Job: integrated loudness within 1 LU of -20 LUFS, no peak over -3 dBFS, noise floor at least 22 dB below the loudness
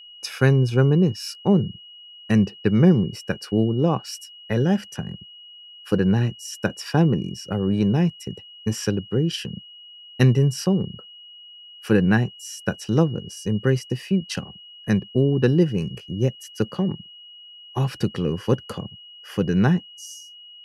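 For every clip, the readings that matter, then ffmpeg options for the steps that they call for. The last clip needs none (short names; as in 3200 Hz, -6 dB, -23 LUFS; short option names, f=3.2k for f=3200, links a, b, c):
steady tone 2900 Hz; tone level -42 dBFS; loudness -22.5 LUFS; peak -4.0 dBFS; loudness target -20.0 LUFS
-> -af "bandreject=f=2.9k:w=30"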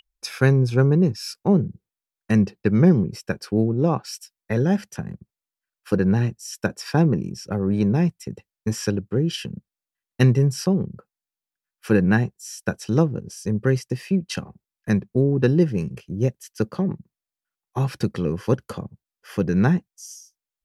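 steady tone none; loudness -22.5 LUFS; peak -4.0 dBFS; loudness target -20.0 LUFS
-> -af "volume=2.5dB,alimiter=limit=-3dB:level=0:latency=1"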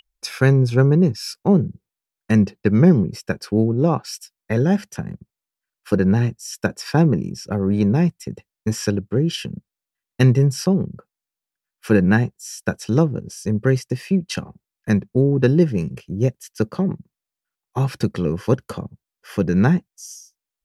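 loudness -20.0 LUFS; peak -3.0 dBFS; noise floor -88 dBFS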